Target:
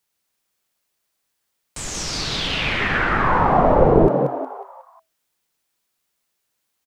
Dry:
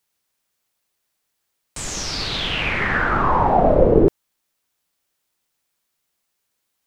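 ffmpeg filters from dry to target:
-filter_complex "[0:a]asplit=6[a][b][c][d][e][f];[b]adelay=182,afreqshift=130,volume=-5.5dB[g];[c]adelay=364,afreqshift=260,volume=-13.2dB[h];[d]adelay=546,afreqshift=390,volume=-21dB[i];[e]adelay=728,afreqshift=520,volume=-28.7dB[j];[f]adelay=910,afreqshift=650,volume=-36.5dB[k];[a][g][h][i][j][k]amix=inputs=6:normalize=0,volume=-1dB"

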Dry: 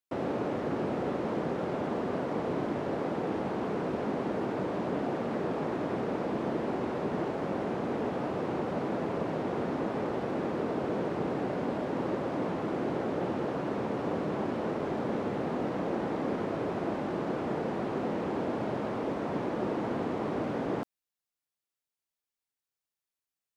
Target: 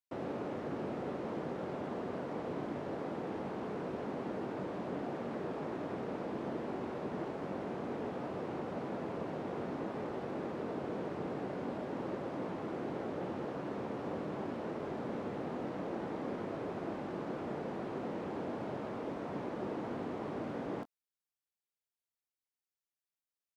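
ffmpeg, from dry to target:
-filter_complex "[0:a]asplit=2[a][b];[b]adelay=21,volume=-13.5dB[c];[a][c]amix=inputs=2:normalize=0,volume=-7.5dB"

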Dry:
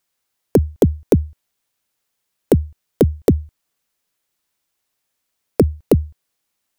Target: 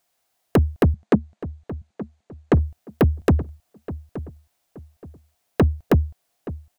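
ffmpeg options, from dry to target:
-filter_complex "[0:a]equalizer=f=700:t=o:w=0.39:g=12.5,asoftclip=type=tanh:threshold=-13.5dB,asettb=1/sr,asplit=3[a][b][c];[a]atrim=end=0.944[d];[b]atrim=start=0.94:end=2.54,asetpts=PTS-STARTPTS,afade=t=in:d=0.004:c=qsin,afade=t=out:st=1.596:d=0.004:c=qsin,highpass=180,equalizer=f=210:t=q:w=4:g=9,equalizer=f=3k:t=q:w=4:g=-3,equalizer=f=5.3k:t=q:w=4:g=-7,lowpass=f=6.9k:w=0.5412,lowpass=f=6.9k:w=1.3066[e];[c]atrim=start=2.536[f];[d][e]acrossfade=d=0.004:c1=hsin:c2=qsin[g];[g][f]acrossfade=d=0.004:c1=qsin:c2=hsin,asplit=2[h][i];[i]adelay=874,lowpass=f=1.3k:p=1,volume=-14.5dB,asplit=2[j][k];[k]adelay=874,lowpass=f=1.3k:p=1,volume=0.32,asplit=2[l][m];[m]adelay=874,lowpass=f=1.3k:p=1,volume=0.32[n];[h][j][l][n]amix=inputs=4:normalize=0,volume=2.5dB"

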